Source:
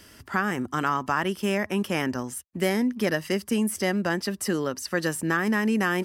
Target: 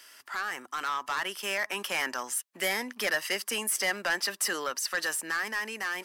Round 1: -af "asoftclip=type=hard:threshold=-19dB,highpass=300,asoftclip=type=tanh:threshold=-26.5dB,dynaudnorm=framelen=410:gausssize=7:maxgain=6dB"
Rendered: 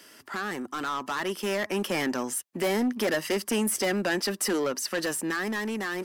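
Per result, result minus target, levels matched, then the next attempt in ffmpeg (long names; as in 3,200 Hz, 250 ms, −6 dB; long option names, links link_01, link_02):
hard clipping: distortion +28 dB; 250 Hz band +13.0 dB
-af "asoftclip=type=hard:threshold=-11.5dB,highpass=300,asoftclip=type=tanh:threshold=-26.5dB,dynaudnorm=framelen=410:gausssize=7:maxgain=6dB"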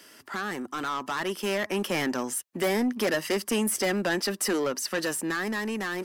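250 Hz band +12.5 dB
-af "asoftclip=type=hard:threshold=-11.5dB,highpass=900,asoftclip=type=tanh:threshold=-26.5dB,dynaudnorm=framelen=410:gausssize=7:maxgain=6dB"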